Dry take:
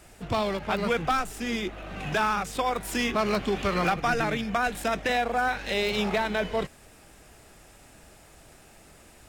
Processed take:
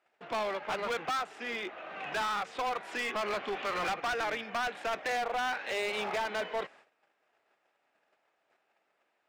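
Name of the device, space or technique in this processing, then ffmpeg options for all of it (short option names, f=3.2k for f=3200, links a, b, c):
walkie-talkie: -af "highpass=560,lowpass=2.6k,asoftclip=type=hard:threshold=-29.5dB,agate=range=-18dB:threshold=-55dB:ratio=16:detection=peak"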